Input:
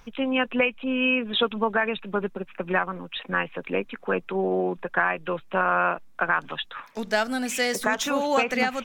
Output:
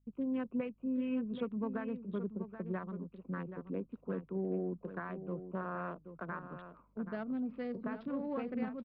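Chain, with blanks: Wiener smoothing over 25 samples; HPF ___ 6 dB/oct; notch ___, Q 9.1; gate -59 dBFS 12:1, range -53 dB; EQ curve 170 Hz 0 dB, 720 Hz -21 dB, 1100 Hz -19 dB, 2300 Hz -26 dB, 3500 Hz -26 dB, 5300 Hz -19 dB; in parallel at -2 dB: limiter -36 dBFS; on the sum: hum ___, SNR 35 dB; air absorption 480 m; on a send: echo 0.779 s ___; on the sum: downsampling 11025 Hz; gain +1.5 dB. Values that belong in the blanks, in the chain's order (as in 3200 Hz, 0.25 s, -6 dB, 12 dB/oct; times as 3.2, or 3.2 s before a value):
500 Hz, 820 Hz, 50 Hz, -10.5 dB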